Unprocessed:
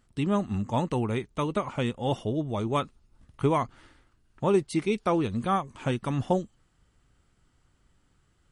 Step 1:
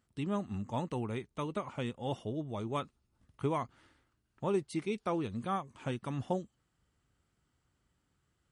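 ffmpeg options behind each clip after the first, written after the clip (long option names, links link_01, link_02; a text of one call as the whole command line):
ffmpeg -i in.wav -af "highpass=58,volume=-8.5dB" out.wav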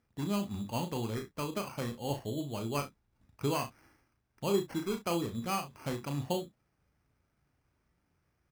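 ffmpeg -i in.wav -af "acrusher=samples=12:mix=1:aa=0.000001,aecho=1:1:35|65:0.473|0.178" out.wav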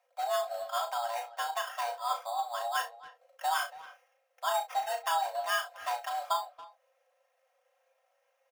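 ffmpeg -i in.wav -filter_complex "[0:a]aecho=1:1:3.6:0.86,afreqshift=470,asplit=2[link_01][link_02];[link_02]adelay=280,highpass=300,lowpass=3400,asoftclip=type=hard:threshold=-25dB,volume=-17dB[link_03];[link_01][link_03]amix=inputs=2:normalize=0" out.wav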